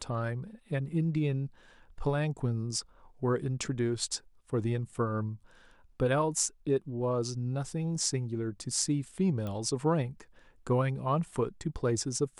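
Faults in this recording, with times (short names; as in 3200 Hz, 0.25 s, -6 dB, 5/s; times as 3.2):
9.47 pop -25 dBFS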